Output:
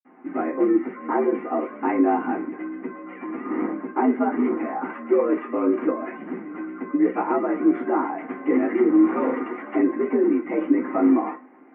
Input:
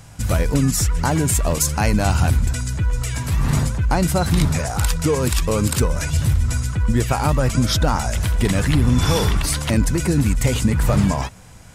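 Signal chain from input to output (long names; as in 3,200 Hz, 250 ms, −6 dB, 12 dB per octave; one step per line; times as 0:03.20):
convolution reverb RT60 0.25 s, pre-delay 46 ms
single-sideband voice off tune +70 Hz 170–2,200 Hz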